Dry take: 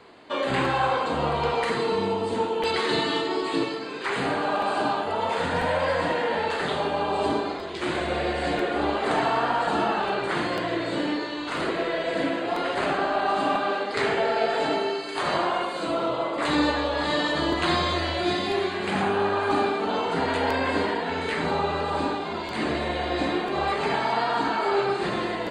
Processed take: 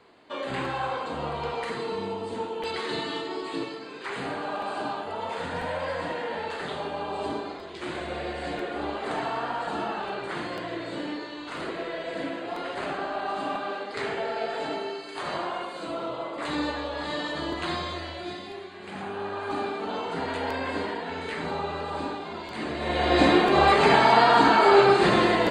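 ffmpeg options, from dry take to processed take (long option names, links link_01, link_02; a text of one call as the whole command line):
ffmpeg -i in.wav -af "volume=16dB,afade=type=out:start_time=17.62:duration=1.06:silence=0.354813,afade=type=in:start_time=18.68:duration=1.16:silence=0.316228,afade=type=in:start_time=22.77:duration=0.45:silence=0.237137" out.wav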